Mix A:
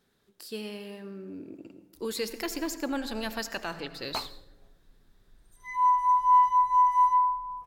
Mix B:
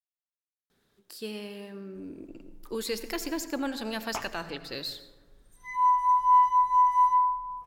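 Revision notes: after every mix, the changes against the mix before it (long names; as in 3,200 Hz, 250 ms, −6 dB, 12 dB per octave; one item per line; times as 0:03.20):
speech: entry +0.70 s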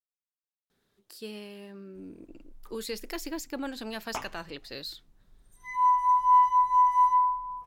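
reverb: off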